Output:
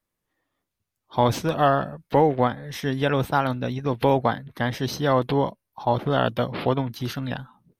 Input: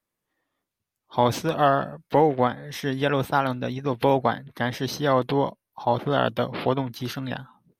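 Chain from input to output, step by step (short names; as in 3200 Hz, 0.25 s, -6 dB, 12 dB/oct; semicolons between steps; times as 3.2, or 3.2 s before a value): low shelf 88 Hz +9.5 dB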